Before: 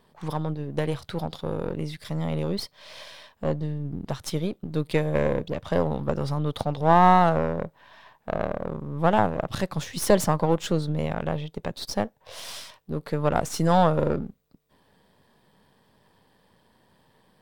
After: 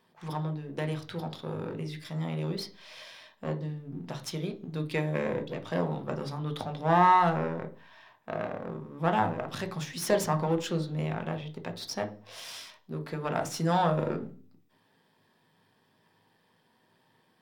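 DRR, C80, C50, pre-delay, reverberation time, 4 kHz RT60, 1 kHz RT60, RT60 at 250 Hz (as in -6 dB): 6.0 dB, 20.5 dB, 15.0 dB, 3 ms, 0.40 s, 0.45 s, 0.40 s, 0.50 s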